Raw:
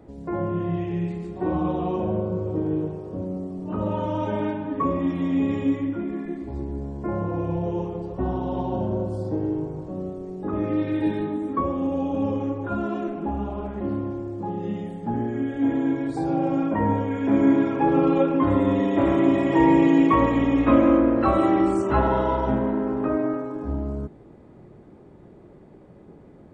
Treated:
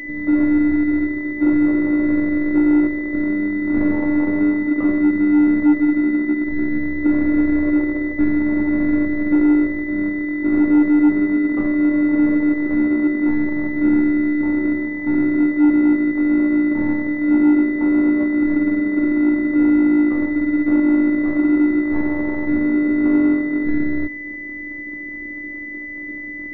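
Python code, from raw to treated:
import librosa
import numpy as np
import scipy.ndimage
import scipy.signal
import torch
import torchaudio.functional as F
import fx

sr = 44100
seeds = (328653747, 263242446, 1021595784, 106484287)

y = np.r_[np.sort(x[:len(x) // 16 * 16].reshape(-1, 16), axis=1).ravel(), x[len(x) // 16 * 16:]]
y = fx.low_shelf_res(y, sr, hz=490.0, db=6.5, q=3.0)
y = fx.rider(y, sr, range_db=10, speed_s=2.0)
y = fx.robotise(y, sr, hz=297.0)
y = 10.0 ** (-7.0 / 20.0) * np.tanh(y / 10.0 ** (-7.0 / 20.0))
y = fx.pwm(y, sr, carrier_hz=2000.0)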